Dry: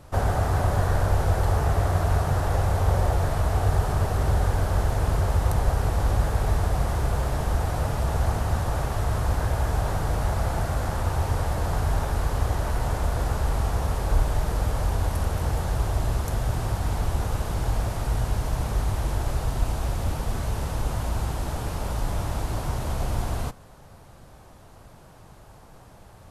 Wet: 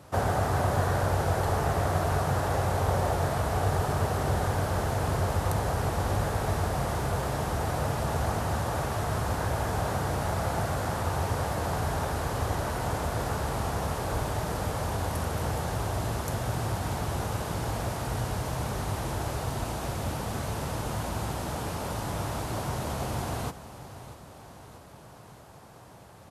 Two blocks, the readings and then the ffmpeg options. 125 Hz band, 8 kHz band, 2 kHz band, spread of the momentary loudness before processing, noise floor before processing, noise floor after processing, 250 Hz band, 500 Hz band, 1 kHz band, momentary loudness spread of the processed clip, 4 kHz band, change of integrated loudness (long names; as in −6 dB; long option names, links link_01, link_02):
−5.0 dB, 0.0 dB, 0.0 dB, 6 LU, −49 dBFS, −49 dBFS, −0.5 dB, 0.0 dB, 0.0 dB, 6 LU, 0.0 dB, −3.5 dB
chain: -filter_complex "[0:a]highpass=110,asplit=2[link_01][link_02];[link_02]aecho=0:1:637|1274|1911|2548|3185|3822:0.178|0.105|0.0619|0.0365|0.0215|0.0127[link_03];[link_01][link_03]amix=inputs=2:normalize=0"